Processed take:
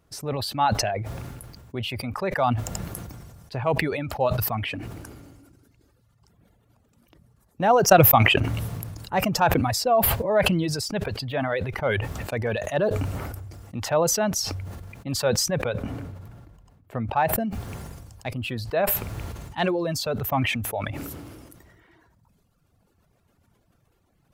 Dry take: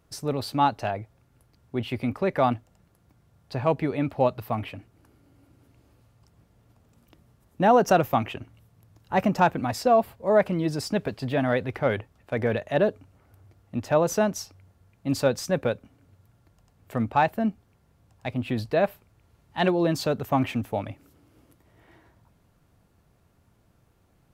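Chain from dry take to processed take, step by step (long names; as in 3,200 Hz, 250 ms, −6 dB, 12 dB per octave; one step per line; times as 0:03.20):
dynamic equaliser 280 Hz, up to −7 dB, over −38 dBFS, Q 1.4
0:07.66–0:08.38: transient designer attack +9 dB, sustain −4 dB
0:15.73–0:17.38: high-shelf EQ 2,600 Hz −8.5 dB
reverb reduction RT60 2 s
level that may fall only so fast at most 29 dB per second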